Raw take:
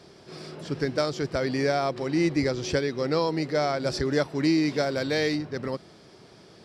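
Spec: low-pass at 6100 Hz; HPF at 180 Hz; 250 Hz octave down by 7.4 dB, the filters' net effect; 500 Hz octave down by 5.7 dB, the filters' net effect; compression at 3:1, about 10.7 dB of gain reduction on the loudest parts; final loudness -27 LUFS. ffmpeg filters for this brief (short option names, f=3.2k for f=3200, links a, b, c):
-af "highpass=180,lowpass=6.1k,equalizer=f=250:t=o:g=-7,equalizer=f=500:t=o:g=-5,acompressor=threshold=-39dB:ratio=3,volume=13.5dB"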